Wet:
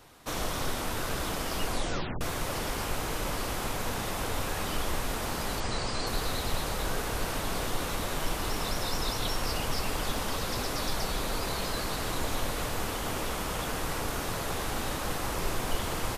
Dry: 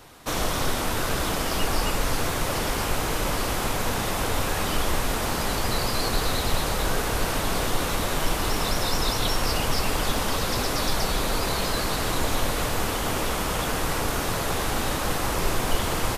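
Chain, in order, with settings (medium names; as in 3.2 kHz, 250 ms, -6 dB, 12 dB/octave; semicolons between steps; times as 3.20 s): 1.67 s: tape stop 0.54 s; 5.60–6.07 s: steep low-pass 9.2 kHz 96 dB/octave; trim -6.5 dB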